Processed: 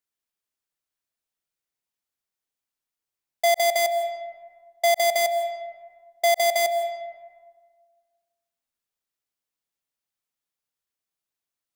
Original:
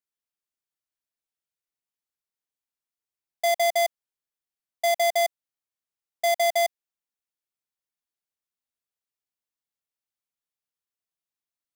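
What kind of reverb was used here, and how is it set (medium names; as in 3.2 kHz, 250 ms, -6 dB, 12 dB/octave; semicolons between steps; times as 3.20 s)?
algorithmic reverb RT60 1.6 s, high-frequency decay 0.5×, pre-delay 115 ms, DRR 9.5 dB; trim +3 dB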